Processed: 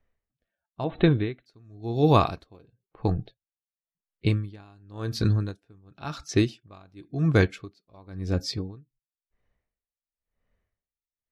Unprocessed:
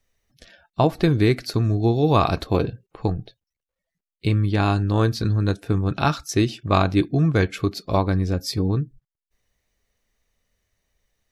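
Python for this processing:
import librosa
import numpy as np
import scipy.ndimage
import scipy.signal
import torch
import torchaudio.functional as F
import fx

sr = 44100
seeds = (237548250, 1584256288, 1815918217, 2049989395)

y = fx.env_lowpass(x, sr, base_hz=1800.0, full_db=-16.5)
y = fx.cheby1_lowpass(y, sr, hz=4000.0, order=10, at=(0.84, 1.46))
y = y * 10.0 ** (-33 * (0.5 - 0.5 * np.cos(2.0 * np.pi * 0.95 * np.arange(len(y)) / sr)) / 20.0)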